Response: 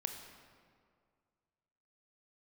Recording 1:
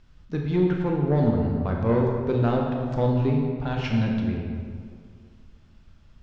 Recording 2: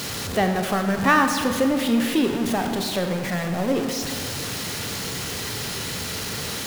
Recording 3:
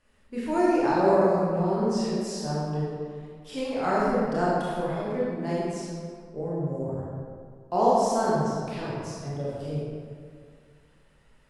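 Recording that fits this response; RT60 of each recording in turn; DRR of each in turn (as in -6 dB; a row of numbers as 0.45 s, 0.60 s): 2; 2.1 s, 2.1 s, 2.1 s; 0.0 dB, 5.0 dB, -8.0 dB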